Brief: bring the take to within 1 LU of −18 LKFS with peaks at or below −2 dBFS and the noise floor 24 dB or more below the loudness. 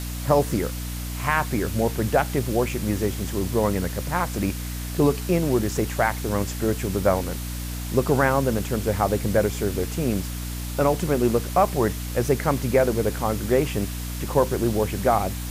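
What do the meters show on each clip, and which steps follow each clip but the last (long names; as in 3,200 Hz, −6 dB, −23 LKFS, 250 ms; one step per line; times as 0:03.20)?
mains hum 60 Hz; hum harmonics up to 300 Hz; level of the hum −28 dBFS; background noise floor −31 dBFS; target noise floor −48 dBFS; integrated loudness −24.0 LKFS; sample peak −7.0 dBFS; target loudness −18.0 LKFS
→ hum removal 60 Hz, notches 5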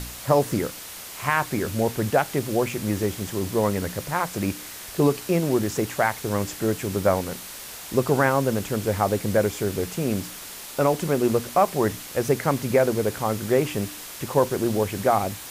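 mains hum none found; background noise floor −39 dBFS; target noise floor −48 dBFS
→ noise reduction from a noise print 9 dB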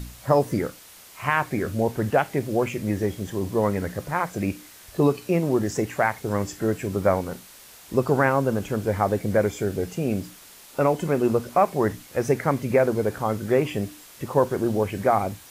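background noise floor −48 dBFS; target noise floor −49 dBFS
→ noise reduction from a noise print 6 dB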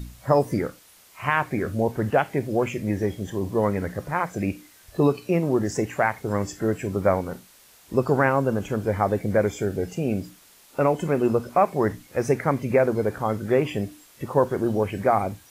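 background noise floor −53 dBFS; integrated loudness −24.5 LKFS; sample peak −7.5 dBFS; target loudness −18.0 LKFS
→ level +6.5 dB
brickwall limiter −2 dBFS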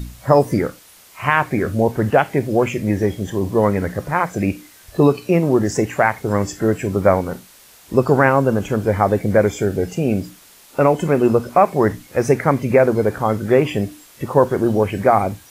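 integrated loudness −18.0 LKFS; sample peak −2.0 dBFS; background noise floor −47 dBFS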